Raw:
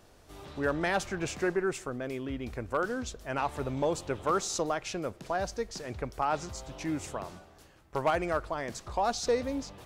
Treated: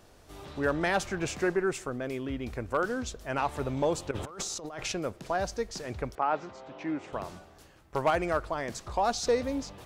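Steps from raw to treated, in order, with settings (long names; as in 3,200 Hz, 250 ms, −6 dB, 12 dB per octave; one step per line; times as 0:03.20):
0:04.11–0:04.92: compressor whose output falls as the input rises −40 dBFS, ratio −1
0:06.15–0:07.13: band-pass filter 230–2,400 Hz
level +1.5 dB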